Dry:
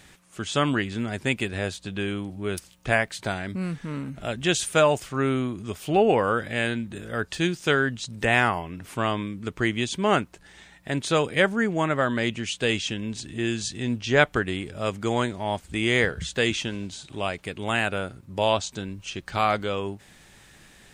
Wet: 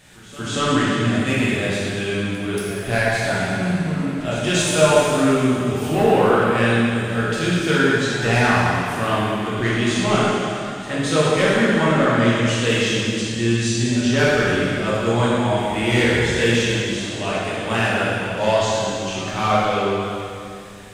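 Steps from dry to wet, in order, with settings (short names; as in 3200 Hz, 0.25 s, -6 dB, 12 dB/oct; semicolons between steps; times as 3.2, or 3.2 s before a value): soft clip -15.5 dBFS, distortion -14 dB; pre-echo 0.232 s -17 dB; plate-style reverb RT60 2.6 s, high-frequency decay 0.95×, DRR -8.5 dB; gain -1 dB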